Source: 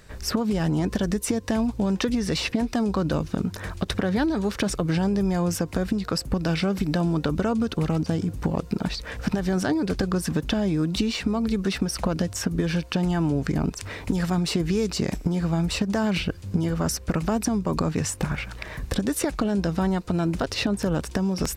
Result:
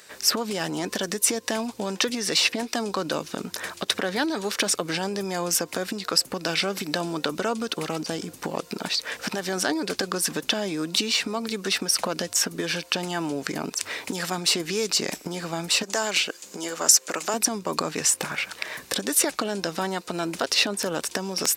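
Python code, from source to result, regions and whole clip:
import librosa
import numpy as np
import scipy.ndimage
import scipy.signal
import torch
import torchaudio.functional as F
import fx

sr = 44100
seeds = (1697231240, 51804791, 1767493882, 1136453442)

y = fx.chain(x, sr, fx.highpass(hz=310.0, slope=12),
    fx.peak_eq(hz=7000.0, db=9.5, octaves=0.42), at=(15.83, 17.34))
y = scipy.signal.sosfilt(scipy.signal.butter(2, 340.0, 'highpass', fs=sr, output='sos'), y)
y = fx.high_shelf(y, sr, hz=2100.0, db=10.0)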